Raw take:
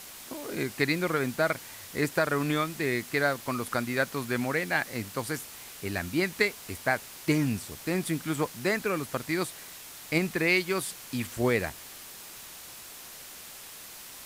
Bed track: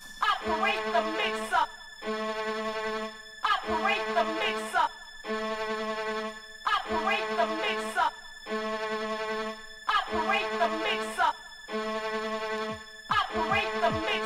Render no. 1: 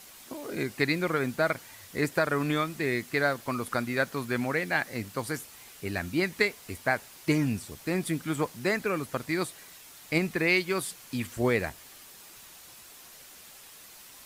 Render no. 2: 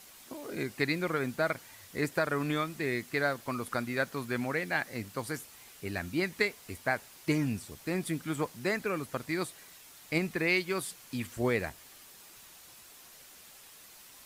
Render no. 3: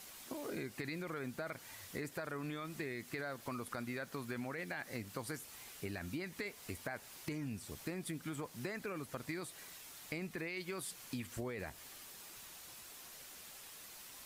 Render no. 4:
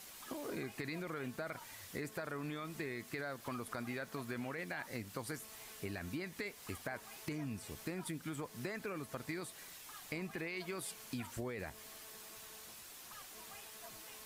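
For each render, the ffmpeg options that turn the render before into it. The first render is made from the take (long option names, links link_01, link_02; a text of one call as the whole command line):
ffmpeg -i in.wav -af "afftdn=noise_reduction=6:noise_floor=-46" out.wav
ffmpeg -i in.wav -af "volume=-3.5dB" out.wav
ffmpeg -i in.wav -af "alimiter=level_in=1dB:limit=-24dB:level=0:latency=1:release=16,volume=-1dB,acompressor=threshold=-39dB:ratio=6" out.wav
ffmpeg -i in.wav -i bed.wav -filter_complex "[1:a]volume=-30.5dB[link_01];[0:a][link_01]amix=inputs=2:normalize=0" out.wav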